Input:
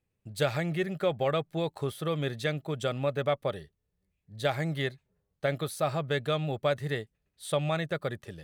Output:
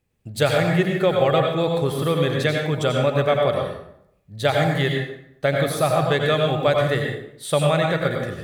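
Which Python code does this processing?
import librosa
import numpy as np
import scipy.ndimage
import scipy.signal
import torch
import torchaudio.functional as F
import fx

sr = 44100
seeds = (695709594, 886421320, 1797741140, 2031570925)

y = fx.rev_plate(x, sr, seeds[0], rt60_s=0.75, hf_ratio=0.7, predelay_ms=75, drr_db=1.0)
y = F.gain(torch.from_numpy(y), 8.0).numpy()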